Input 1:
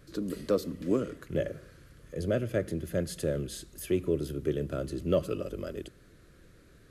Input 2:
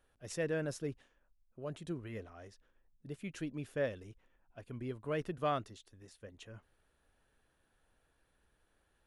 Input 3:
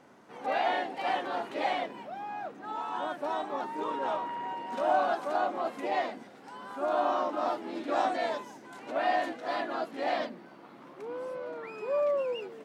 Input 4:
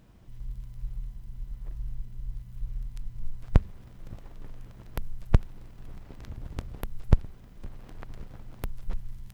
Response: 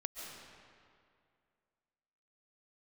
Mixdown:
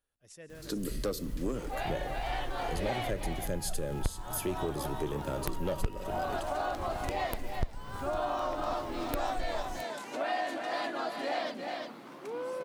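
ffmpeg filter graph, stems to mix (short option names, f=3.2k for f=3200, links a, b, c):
-filter_complex "[0:a]asoftclip=type=tanh:threshold=-20dB,adelay=550,volume=1.5dB[a];[1:a]volume=-17.5dB,asplit=3[b][c][d];[c]volume=-5dB[e];[2:a]adelay=1250,volume=1dB,asplit=2[f][g];[g]volume=-8.5dB[h];[3:a]asoftclip=type=tanh:threshold=-5dB,adelay=500,volume=-0.5dB,asplit=2[i][j];[j]volume=-8dB[k];[d]apad=whole_len=612753[l];[f][l]sidechaincompress=threshold=-60dB:ratio=8:attack=16:release=1040[m];[4:a]atrim=start_sample=2205[n];[e][k]amix=inputs=2:normalize=0[o];[o][n]afir=irnorm=-1:irlink=0[p];[h]aecho=0:1:355:1[q];[a][b][m][i][p][q]amix=inputs=6:normalize=0,highshelf=f=3.9k:g=10,acompressor=threshold=-32dB:ratio=2.5"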